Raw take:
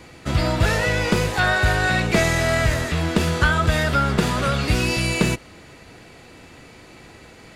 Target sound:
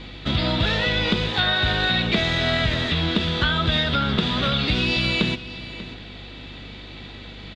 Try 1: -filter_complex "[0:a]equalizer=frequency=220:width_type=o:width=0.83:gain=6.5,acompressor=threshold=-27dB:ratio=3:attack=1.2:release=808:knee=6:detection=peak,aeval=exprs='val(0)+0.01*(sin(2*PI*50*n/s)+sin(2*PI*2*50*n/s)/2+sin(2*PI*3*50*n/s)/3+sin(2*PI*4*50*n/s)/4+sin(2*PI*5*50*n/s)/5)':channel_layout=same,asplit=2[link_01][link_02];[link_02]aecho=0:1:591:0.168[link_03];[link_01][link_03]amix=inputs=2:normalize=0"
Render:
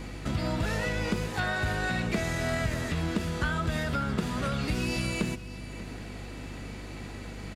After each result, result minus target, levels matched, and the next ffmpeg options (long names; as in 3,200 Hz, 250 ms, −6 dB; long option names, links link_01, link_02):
4,000 Hz band −7.5 dB; downward compressor: peak gain reduction +6.5 dB
-filter_complex "[0:a]lowpass=frequency=3600:width_type=q:width=6.7,equalizer=frequency=220:width_type=o:width=0.83:gain=6.5,acompressor=threshold=-27dB:ratio=3:attack=1.2:release=808:knee=6:detection=peak,aeval=exprs='val(0)+0.01*(sin(2*PI*50*n/s)+sin(2*PI*2*50*n/s)/2+sin(2*PI*3*50*n/s)/3+sin(2*PI*4*50*n/s)/4+sin(2*PI*5*50*n/s)/5)':channel_layout=same,asplit=2[link_01][link_02];[link_02]aecho=0:1:591:0.168[link_03];[link_01][link_03]amix=inputs=2:normalize=0"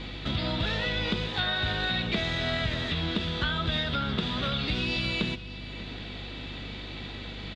downward compressor: peak gain reduction +7.5 dB
-filter_complex "[0:a]lowpass=frequency=3600:width_type=q:width=6.7,equalizer=frequency=220:width_type=o:width=0.83:gain=6.5,acompressor=threshold=-15.5dB:ratio=3:attack=1.2:release=808:knee=6:detection=peak,aeval=exprs='val(0)+0.01*(sin(2*PI*50*n/s)+sin(2*PI*2*50*n/s)/2+sin(2*PI*3*50*n/s)/3+sin(2*PI*4*50*n/s)/4+sin(2*PI*5*50*n/s)/5)':channel_layout=same,asplit=2[link_01][link_02];[link_02]aecho=0:1:591:0.168[link_03];[link_01][link_03]amix=inputs=2:normalize=0"